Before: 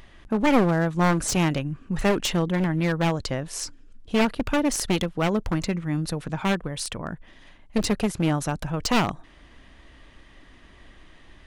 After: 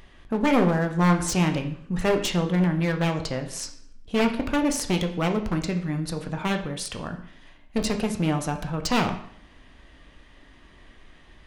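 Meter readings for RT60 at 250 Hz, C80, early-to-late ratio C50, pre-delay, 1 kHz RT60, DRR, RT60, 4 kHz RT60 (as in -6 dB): 0.65 s, 13.0 dB, 10.5 dB, 5 ms, 0.65 s, 5.0 dB, 0.60 s, 0.55 s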